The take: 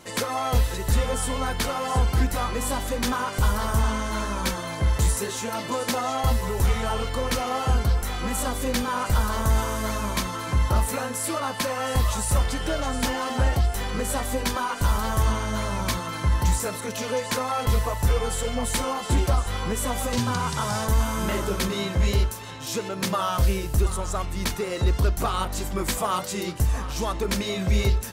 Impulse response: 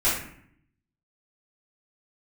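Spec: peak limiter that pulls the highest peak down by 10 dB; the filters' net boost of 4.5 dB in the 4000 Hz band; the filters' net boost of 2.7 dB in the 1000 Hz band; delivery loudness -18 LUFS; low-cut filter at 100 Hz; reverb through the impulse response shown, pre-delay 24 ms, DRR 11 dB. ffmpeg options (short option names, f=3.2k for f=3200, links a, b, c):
-filter_complex "[0:a]highpass=100,equalizer=f=1k:t=o:g=3,equalizer=f=4k:t=o:g=5.5,alimiter=limit=-19.5dB:level=0:latency=1,asplit=2[a][b];[1:a]atrim=start_sample=2205,adelay=24[c];[b][c]afir=irnorm=-1:irlink=0,volume=-25dB[d];[a][d]amix=inputs=2:normalize=0,volume=10.5dB"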